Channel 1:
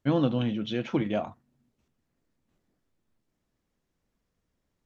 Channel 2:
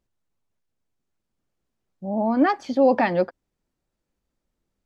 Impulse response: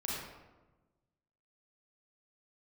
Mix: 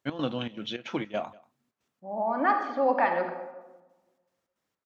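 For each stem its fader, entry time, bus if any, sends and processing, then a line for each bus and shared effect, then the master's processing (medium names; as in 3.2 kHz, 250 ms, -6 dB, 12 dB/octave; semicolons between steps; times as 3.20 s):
+2.5 dB, 0.00 s, no send, echo send -23.5 dB, high-pass 110 Hz; bass shelf 430 Hz -11 dB; trance gate "x.xxx.xx.xx.x" 158 bpm -12 dB
-3.0 dB, 0.00 s, send -4 dB, no echo send, band-pass filter 1.2 kHz, Q 1.2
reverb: on, RT60 1.2 s, pre-delay 32 ms
echo: delay 188 ms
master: none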